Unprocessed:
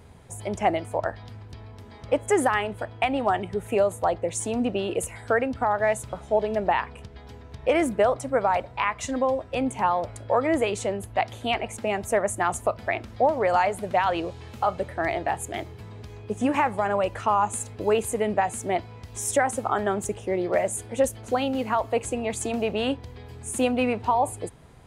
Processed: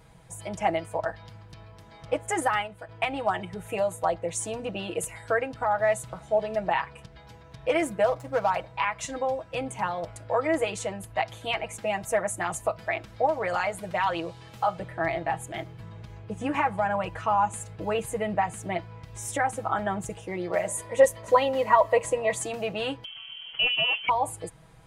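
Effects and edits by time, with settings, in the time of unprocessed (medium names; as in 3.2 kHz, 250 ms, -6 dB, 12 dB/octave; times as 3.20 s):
2.40–2.89 s: gate -28 dBFS, range -7 dB
8.06–8.50 s: median filter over 15 samples
14.79–20.10 s: tone controls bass +4 dB, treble -6 dB
20.68–22.42 s: small resonant body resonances 580/1000/1900 Hz, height 17 dB
23.04–24.09 s: frequency inversion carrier 3.2 kHz
whole clip: peaking EQ 330 Hz -5.5 dB 1.4 oct; comb 6.2 ms, depth 75%; trim -3 dB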